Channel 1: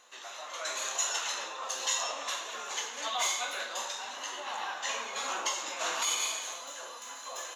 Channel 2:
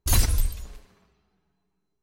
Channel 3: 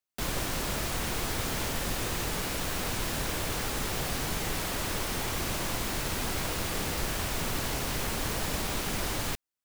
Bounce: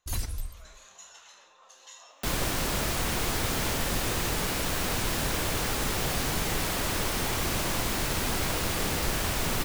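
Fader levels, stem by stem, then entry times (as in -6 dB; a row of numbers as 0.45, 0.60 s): -18.5, -11.5, +3.0 dB; 0.00, 0.00, 2.05 s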